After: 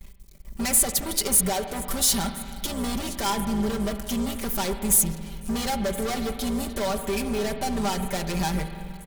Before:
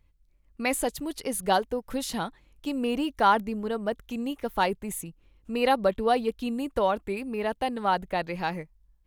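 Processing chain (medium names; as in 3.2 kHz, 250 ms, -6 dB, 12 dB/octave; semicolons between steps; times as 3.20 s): octave divider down 2 oct, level -4 dB; compression 2.5:1, threshold -42 dBFS, peak gain reduction 17.5 dB; feedback echo behind a high-pass 1021 ms, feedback 59%, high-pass 3.5 kHz, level -23 dB; waveshaping leveller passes 5; tone controls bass +2 dB, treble +13 dB; band-stop 2.7 kHz, Q 17; comb 5.1 ms, depth 81%; spring tank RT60 2.3 s, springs 43/49 ms, chirp 60 ms, DRR 7.5 dB; trim -2.5 dB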